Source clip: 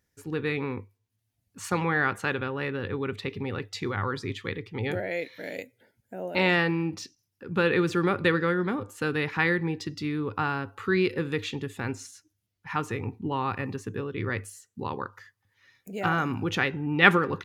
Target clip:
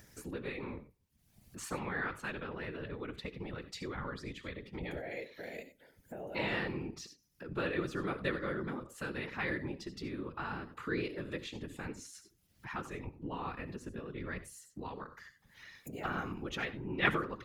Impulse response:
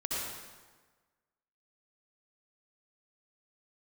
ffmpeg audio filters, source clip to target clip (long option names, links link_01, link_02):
-filter_complex "[0:a]asplit=2[link_01][link_02];[1:a]atrim=start_sample=2205,atrim=end_sample=4410,highshelf=frequency=4100:gain=6[link_03];[link_02][link_03]afir=irnorm=-1:irlink=0,volume=-13.5dB[link_04];[link_01][link_04]amix=inputs=2:normalize=0,afftfilt=real='hypot(re,im)*cos(2*PI*random(0))':imag='hypot(re,im)*sin(2*PI*random(1))':win_size=512:overlap=0.75,acompressor=mode=upward:threshold=-31dB:ratio=2.5,volume=-7dB"